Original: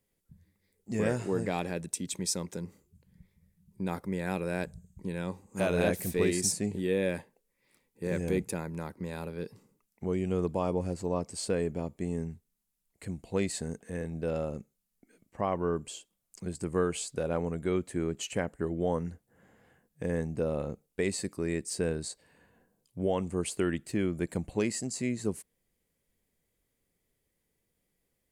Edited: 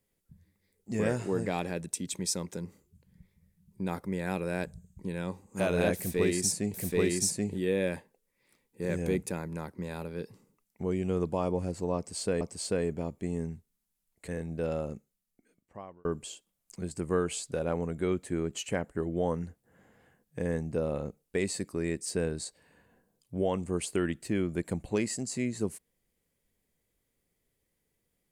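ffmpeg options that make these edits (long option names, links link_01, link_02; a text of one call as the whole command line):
ffmpeg -i in.wav -filter_complex "[0:a]asplit=5[link_01][link_02][link_03][link_04][link_05];[link_01]atrim=end=6.742[link_06];[link_02]atrim=start=5.958:end=11.632[link_07];[link_03]atrim=start=11.188:end=13.062[link_08];[link_04]atrim=start=13.918:end=15.69,asetpts=PTS-STARTPTS,afade=type=out:start_time=0.602:duration=1.17[link_09];[link_05]atrim=start=15.69,asetpts=PTS-STARTPTS,afade=type=in:duration=0.004:curve=hsin[link_10];[link_06][link_07]acrossfade=duration=0.004:curve1=hsin:curve2=hsin[link_11];[link_11][link_08]acrossfade=duration=0.004:curve1=hsin:curve2=hsin[link_12];[link_09][link_10]concat=n=2:v=0:a=1[link_13];[link_12][link_13]acrossfade=duration=0.004:curve1=hsin:curve2=hsin" out.wav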